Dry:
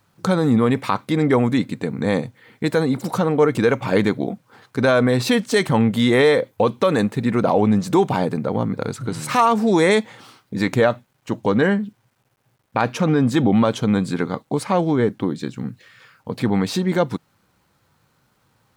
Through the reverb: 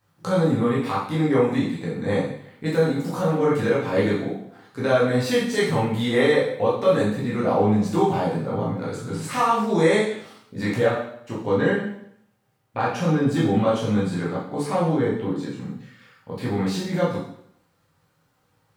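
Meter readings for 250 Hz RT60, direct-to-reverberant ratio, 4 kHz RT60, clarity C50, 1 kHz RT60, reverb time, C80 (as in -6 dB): 0.70 s, -7.5 dB, 0.65 s, 2.5 dB, 0.70 s, 0.70 s, 7.0 dB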